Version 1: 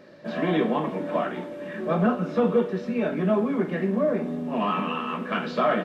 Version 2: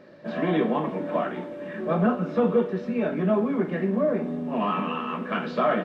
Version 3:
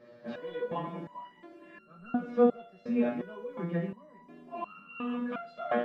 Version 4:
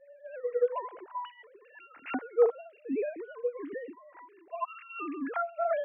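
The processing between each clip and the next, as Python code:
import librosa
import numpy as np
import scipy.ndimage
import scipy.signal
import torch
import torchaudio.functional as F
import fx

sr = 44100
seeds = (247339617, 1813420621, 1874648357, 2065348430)

y1 = fx.high_shelf(x, sr, hz=4300.0, db=-8.5)
y2 = fx.resonator_held(y1, sr, hz=2.8, low_hz=120.0, high_hz=1400.0)
y2 = y2 * 10.0 ** (4.5 / 20.0)
y3 = fx.sine_speech(y2, sr)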